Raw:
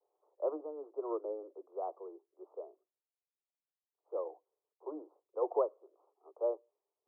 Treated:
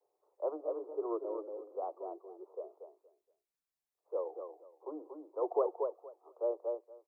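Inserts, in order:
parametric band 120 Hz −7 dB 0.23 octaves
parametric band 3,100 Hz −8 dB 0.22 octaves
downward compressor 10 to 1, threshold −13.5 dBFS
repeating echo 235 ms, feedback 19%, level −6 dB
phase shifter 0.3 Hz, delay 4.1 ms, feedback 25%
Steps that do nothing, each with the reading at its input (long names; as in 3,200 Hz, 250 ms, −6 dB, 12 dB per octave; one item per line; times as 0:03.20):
parametric band 120 Hz: nothing at its input below 270 Hz
parametric band 3,100 Hz: nothing at its input above 1,300 Hz
downward compressor, threshold −13.5 dBFS: peak of its input −18.5 dBFS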